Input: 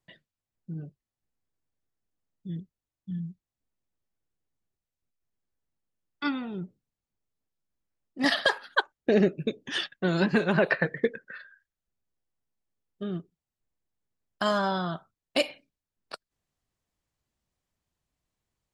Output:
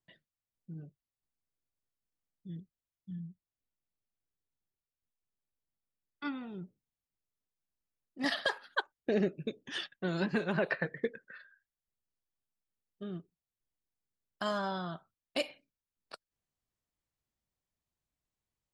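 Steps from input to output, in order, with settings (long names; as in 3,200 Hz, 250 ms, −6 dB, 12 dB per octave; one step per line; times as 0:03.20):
0:03.15–0:06.41: high-frequency loss of the air 150 metres
level −8 dB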